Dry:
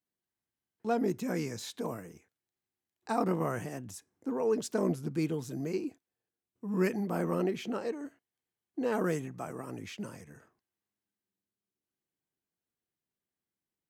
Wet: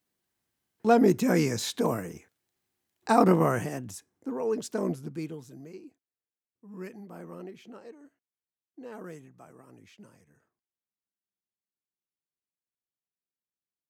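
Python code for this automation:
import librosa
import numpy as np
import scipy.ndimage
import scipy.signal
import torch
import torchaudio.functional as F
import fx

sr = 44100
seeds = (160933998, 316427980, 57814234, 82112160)

y = fx.gain(x, sr, db=fx.line((3.3, 9.5), (4.31, 0.0), (4.89, 0.0), (5.77, -12.0)))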